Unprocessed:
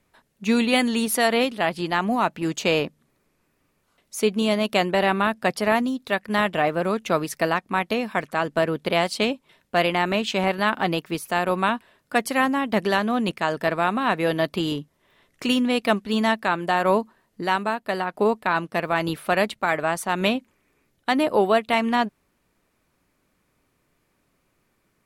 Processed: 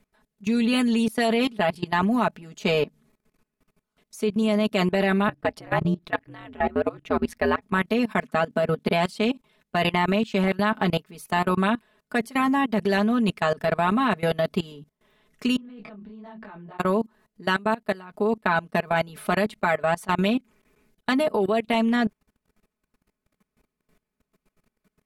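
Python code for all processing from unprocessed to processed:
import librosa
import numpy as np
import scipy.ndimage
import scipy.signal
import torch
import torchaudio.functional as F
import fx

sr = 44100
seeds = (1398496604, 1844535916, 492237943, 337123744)

y = fx.chain(x, sr, fx.bass_treble(bass_db=3, treble_db=-10),
    fx.ring_mod(carrier_hz=82.0), at=(5.28, 7.62))
y = fx.chain(y, sr, fx.highpass(hz=130.0, slope=12),
    fx.peak_eq(hz=240.0, db=9.0, octaves=0.37), at=(8.23, 8.88))
y = fx.chain(y, sr, fx.over_compress(threshold_db=-33.0, ratio=-1.0),
    fx.spacing_loss(db_at_10k=29),
    fx.detune_double(cents=37), at=(15.56, 16.79))
y = fx.low_shelf(y, sr, hz=420.0, db=5.0)
y = y + 0.78 * np.pad(y, (int(4.7 * sr / 1000.0), 0))[:len(y)]
y = fx.level_steps(y, sr, step_db=21)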